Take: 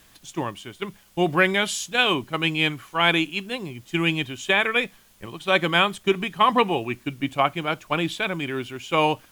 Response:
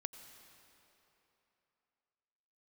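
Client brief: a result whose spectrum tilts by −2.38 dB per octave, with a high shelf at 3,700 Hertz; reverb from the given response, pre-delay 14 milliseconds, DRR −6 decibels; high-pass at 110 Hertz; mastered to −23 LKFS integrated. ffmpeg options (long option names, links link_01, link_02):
-filter_complex "[0:a]highpass=110,highshelf=frequency=3700:gain=-6,asplit=2[link_01][link_02];[1:a]atrim=start_sample=2205,adelay=14[link_03];[link_02][link_03]afir=irnorm=-1:irlink=0,volume=8.5dB[link_04];[link_01][link_04]amix=inputs=2:normalize=0,volume=-6dB"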